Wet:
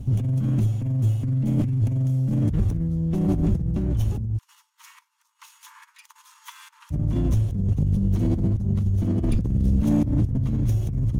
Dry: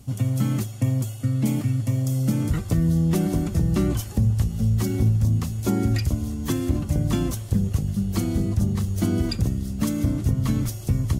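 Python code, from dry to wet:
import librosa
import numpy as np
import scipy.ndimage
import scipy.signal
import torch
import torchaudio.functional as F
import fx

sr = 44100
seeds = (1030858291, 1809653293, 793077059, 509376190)

y = fx.lower_of_two(x, sr, delay_ms=0.32)
y = fx.tilt_eq(y, sr, slope=-3.0)
y = fx.over_compress(y, sr, threshold_db=-19.0, ratio=-1.0)
y = fx.brickwall_highpass(y, sr, low_hz=860.0, at=(4.37, 6.9), fade=0.02)
y = 10.0 ** (-9.5 / 20.0) * np.tanh(y / 10.0 ** (-9.5 / 20.0))
y = y * librosa.db_to_amplitude(-2.0)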